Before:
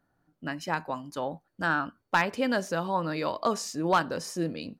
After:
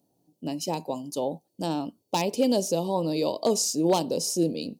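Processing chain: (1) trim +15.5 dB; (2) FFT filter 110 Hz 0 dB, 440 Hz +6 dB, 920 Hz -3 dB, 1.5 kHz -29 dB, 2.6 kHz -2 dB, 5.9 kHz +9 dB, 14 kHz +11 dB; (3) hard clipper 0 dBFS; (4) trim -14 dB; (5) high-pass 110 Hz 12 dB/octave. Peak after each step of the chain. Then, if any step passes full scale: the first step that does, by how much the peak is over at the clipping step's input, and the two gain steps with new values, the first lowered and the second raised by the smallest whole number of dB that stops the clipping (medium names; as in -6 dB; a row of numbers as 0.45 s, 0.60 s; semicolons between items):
+1.0 dBFS, +3.5 dBFS, 0.0 dBFS, -14.0 dBFS, -11.5 dBFS; step 1, 3.5 dB; step 1 +11.5 dB, step 4 -10 dB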